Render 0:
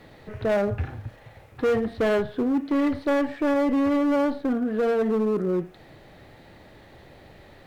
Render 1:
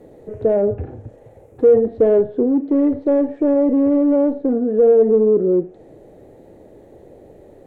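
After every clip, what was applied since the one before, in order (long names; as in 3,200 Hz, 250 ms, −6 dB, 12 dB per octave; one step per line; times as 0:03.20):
treble cut that deepens with the level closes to 2,700 Hz, closed at −22 dBFS
drawn EQ curve 150 Hz 0 dB, 460 Hz +12 dB, 1,200 Hz −10 dB, 4,700 Hz −15 dB, 6,900 Hz 0 dB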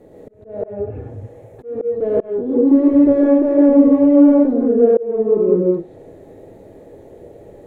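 reverb whose tail is shaped and stops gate 210 ms rising, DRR −4.5 dB
volume swells 491 ms
level −2 dB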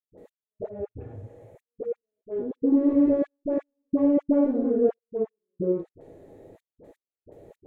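gate pattern ".x...xx.xxxxx." 126 BPM −60 dB
all-pass dispersion highs, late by 56 ms, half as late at 740 Hz
level −8.5 dB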